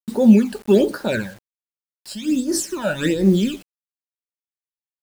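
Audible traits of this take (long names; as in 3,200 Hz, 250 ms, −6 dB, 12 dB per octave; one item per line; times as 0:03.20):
phaser sweep stages 12, 1.3 Hz, lowest notch 350–2,800 Hz
a quantiser's noise floor 8 bits, dither none
amplitude modulation by smooth noise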